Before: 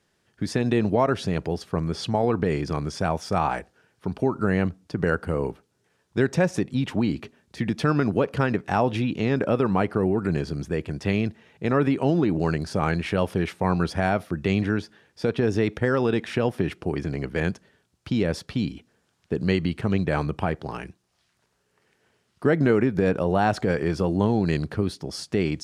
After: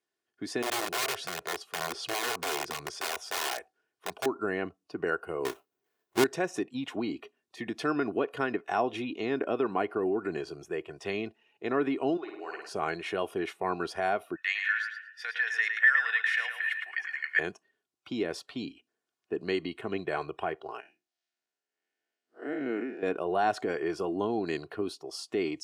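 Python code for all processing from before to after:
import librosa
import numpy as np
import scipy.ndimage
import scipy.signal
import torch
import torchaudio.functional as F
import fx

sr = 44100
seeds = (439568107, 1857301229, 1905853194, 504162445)

y = fx.chain(x, sr, fx.low_shelf(hz=150.0, db=2.0),
    fx.overflow_wrap(gain_db=19.5), at=(0.62, 4.26))
y = fx.chain(y, sr, fx.halfwave_hold(),
    fx.doubler(ms=30.0, db=-13), at=(5.45, 6.24))
y = fx.chain(y, sr, fx.highpass(hz=1400.0, slope=6),
    fx.high_shelf(hz=2300.0, db=-5.5),
    fx.room_flutter(wall_m=9.2, rt60_s=0.8), at=(12.17, 12.69))
y = fx.chain(y, sr, fx.highpass_res(hz=1800.0, q=7.6),
    fx.echo_feedback(ms=110, feedback_pct=34, wet_db=-6), at=(14.36, 17.39))
y = fx.chain(y, sr, fx.spec_blur(span_ms=143.0),
    fx.cabinet(low_hz=150.0, low_slope=24, high_hz=8900.0, hz=(170.0, 410.0, 1100.0), db=(-8, -8, -10)), at=(20.8, 23.03))
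y = scipy.signal.sosfilt(scipy.signal.butter(2, 260.0, 'highpass', fs=sr, output='sos'), y)
y = fx.noise_reduce_blind(y, sr, reduce_db=12)
y = y + 0.49 * np.pad(y, (int(2.8 * sr / 1000.0), 0))[:len(y)]
y = y * librosa.db_to_amplitude(-6.0)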